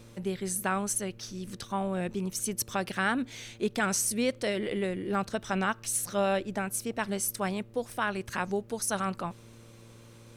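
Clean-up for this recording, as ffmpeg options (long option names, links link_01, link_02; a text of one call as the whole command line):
ffmpeg -i in.wav -af "bandreject=frequency=114.5:width_type=h:width=4,bandreject=frequency=229:width_type=h:width=4,bandreject=frequency=343.5:width_type=h:width=4,bandreject=frequency=458:width_type=h:width=4,bandreject=frequency=572.5:width_type=h:width=4" out.wav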